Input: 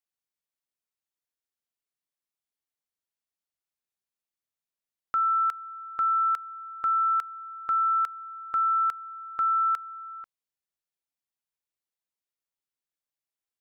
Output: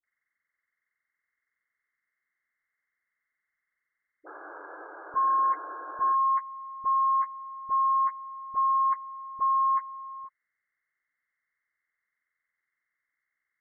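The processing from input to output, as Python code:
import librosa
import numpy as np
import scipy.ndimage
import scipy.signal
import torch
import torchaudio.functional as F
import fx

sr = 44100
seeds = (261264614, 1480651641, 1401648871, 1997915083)

y = fx.freq_compress(x, sr, knee_hz=1000.0, ratio=4.0)
y = fx.spec_paint(y, sr, seeds[0], shape='noise', start_s=4.23, length_s=1.89, low_hz=290.0, high_hz=1700.0, level_db=-44.0)
y = fx.dispersion(y, sr, late='highs', ms=42.0, hz=800.0)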